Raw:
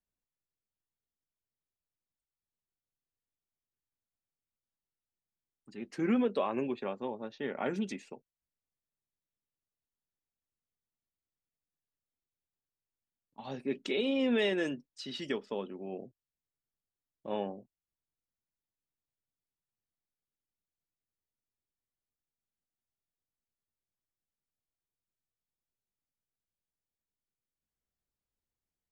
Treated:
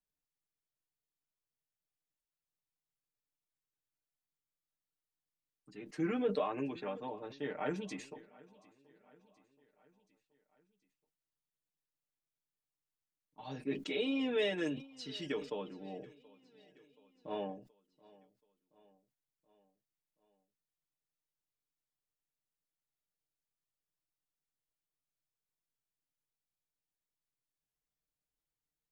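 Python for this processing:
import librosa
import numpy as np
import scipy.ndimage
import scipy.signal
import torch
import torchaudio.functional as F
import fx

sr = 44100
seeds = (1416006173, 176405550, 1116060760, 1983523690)

p1 = x + 0.95 * np.pad(x, (int(6.6 * sr / 1000.0), 0))[:len(x)]
p2 = p1 + fx.echo_feedback(p1, sr, ms=727, feedback_pct=56, wet_db=-23.0, dry=0)
p3 = fx.sustainer(p2, sr, db_per_s=130.0)
y = F.gain(torch.from_numpy(p3), -6.0).numpy()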